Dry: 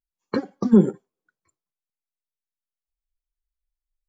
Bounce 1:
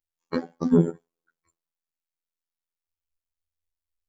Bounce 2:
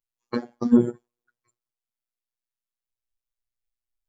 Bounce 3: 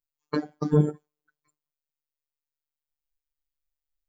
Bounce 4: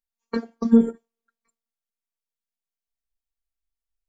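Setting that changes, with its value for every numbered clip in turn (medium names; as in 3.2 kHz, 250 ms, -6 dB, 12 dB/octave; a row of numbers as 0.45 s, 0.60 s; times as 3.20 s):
robot voice, frequency: 84 Hz, 120 Hz, 150 Hz, 230 Hz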